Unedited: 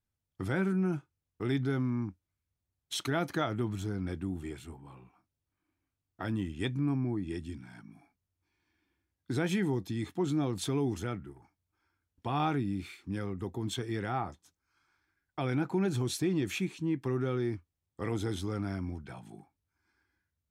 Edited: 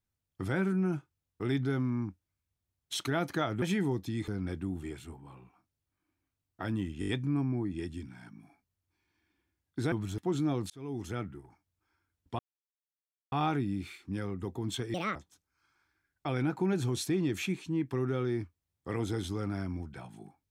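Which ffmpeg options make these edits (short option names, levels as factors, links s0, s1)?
-filter_complex "[0:a]asplit=13[s0][s1][s2][s3][s4][s5][s6][s7][s8][s9][s10][s11][s12];[s0]atrim=end=3.622[s13];[s1]atrim=start=9.438:end=10.102[s14];[s2]atrim=start=3.878:end=6.622[s15];[s3]atrim=start=6.598:end=6.622[s16];[s4]atrim=start=6.598:end=6.622[s17];[s5]atrim=start=6.598:end=6.622[s18];[s6]atrim=start=6.598:end=9.442[s19];[s7]atrim=start=3.618:end=3.882[s20];[s8]atrim=start=10.098:end=10.62,asetpts=PTS-STARTPTS,afade=t=out:st=0.518:d=0.004:c=hsin[s21];[s9]atrim=start=10.62:end=12.31,asetpts=PTS-STARTPTS,afade=t=in:d=0.5,afade=t=out:st=1.686:d=0.004:c=hsin,apad=pad_dur=0.93[s22];[s10]atrim=start=12.31:end=13.934,asetpts=PTS-STARTPTS,afade=t=in:d=0.004:c=hsin[s23];[s11]atrim=start=13.93:end=14.28,asetpts=PTS-STARTPTS,asetrate=72324,aresample=44100[s24];[s12]atrim=start=14.276[s25];[s13][s14]acrossfade=d=0.004:c1=hsin:c2=hsin[s26];[s26][s15]acrossfade=d=0.004:c1=hsin:c2=hsin[s27];[s27][s16]acrossfade=d=0.004:c1=hsin:c2=hsin[s28];[s28][s17]acrossfade=d=0.004:c1=hsin:c2=hsin[s29];[s29][s18]acrossfade=d=0.004:c1=hsin:c2=hsin[s30];[s30][s19]acrossfade=d=0.004:c1=hsin:c2=hsin[s31];[s31][s20]acrossfade=d=0.004:c1=hsin:c2=hsin[s32];[s21][s22][s23]concat=n=3:v=0:a=1[s33];[s32][s33]acrossfade=d=0.004:c1=hsin:c2=hsin[s34];[s34][s24]acrossfade=d=0.004:c1=hsin:c2=hsin[s35];[s35][s25]acrossfade=d=0.004:c1=hsin:c2=hsin"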